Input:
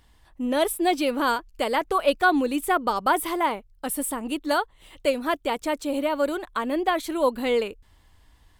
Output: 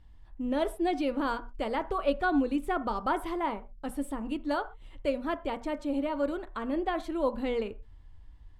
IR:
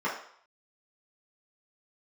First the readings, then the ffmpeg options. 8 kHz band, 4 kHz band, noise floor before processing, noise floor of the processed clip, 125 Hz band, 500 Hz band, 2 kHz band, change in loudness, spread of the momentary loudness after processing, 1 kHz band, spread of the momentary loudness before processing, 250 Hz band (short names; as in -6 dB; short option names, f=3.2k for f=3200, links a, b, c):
-19.5 dB, -11.5 dB, -58 dBFS, -51 dBFS, n/a, -6.5 dB, -9.5 dB, -6.5 dB, 7 LU, -8.0 dB, 6 LU, -3.5 dB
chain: -filter_complex "[0:a]aemphasis=mode=reproduction:type=bsi,bandreject=f=60:t=h:w=6,bandreject=f=120:t=h:w=6,bandreject=f=180:t=h:w=6,bandreject=f=240:t=h:w=6,asplit=2[a][b];[1:a]atrim=start_sample=2205,atrim=end_sample=6174[c];[b][c]afir=irnorm=-1:irlink=0,volume=-21dB[d];[a][d]amix=inputs=2:normalize=0,volume=-8dB"